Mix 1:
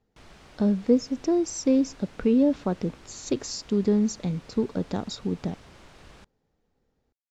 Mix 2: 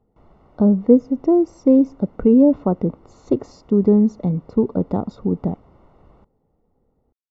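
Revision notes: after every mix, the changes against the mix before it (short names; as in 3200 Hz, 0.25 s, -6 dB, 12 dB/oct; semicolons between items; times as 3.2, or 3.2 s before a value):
speech +8.0 dB; master: add polynomial smoothing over 65 samples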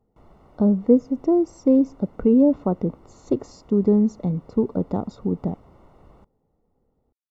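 speech -3.5 dB; master: remove air absorption 88 m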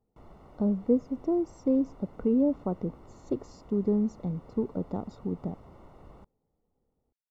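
speech -8.5 dB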